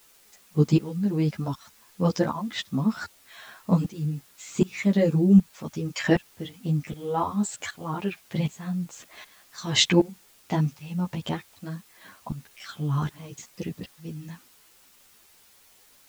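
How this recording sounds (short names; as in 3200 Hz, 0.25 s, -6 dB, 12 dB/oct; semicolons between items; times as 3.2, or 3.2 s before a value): tremolo saw up 1.3 Hz, depth 90%; a quantiser's noise floor 10-bit, dither triangular; a shimmering, thickened sound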